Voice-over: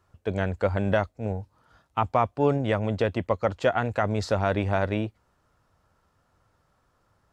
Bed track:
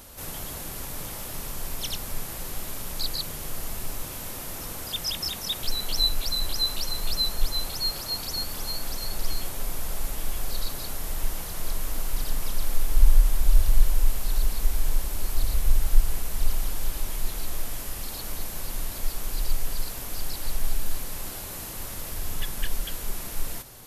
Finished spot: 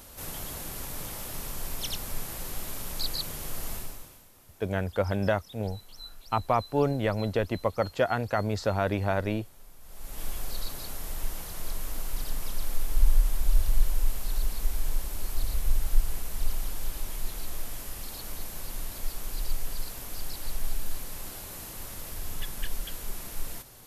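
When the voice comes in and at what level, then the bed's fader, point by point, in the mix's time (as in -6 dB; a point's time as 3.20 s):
4.35 s, -2.5 dB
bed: 3.75 s -2 dB
4.29 s -21.5 dB
9.79 s -21.5 dB
10.22 s -4.5 dB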